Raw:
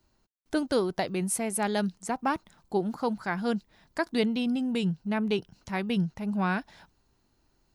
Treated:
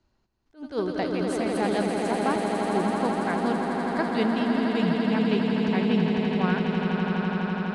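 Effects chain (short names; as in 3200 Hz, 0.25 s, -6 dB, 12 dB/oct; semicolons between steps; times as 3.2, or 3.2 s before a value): air absorption 100 m; swelling echo 83 ms, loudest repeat 8, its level -7.5 dB; attack slew limiter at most 240 dB/s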